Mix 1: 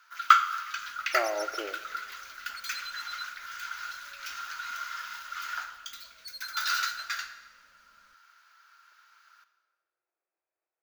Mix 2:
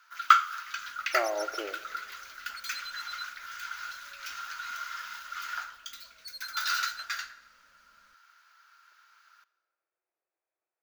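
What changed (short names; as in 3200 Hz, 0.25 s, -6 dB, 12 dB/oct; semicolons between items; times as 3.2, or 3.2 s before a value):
first sound: send -7.0 dB; second sound: send off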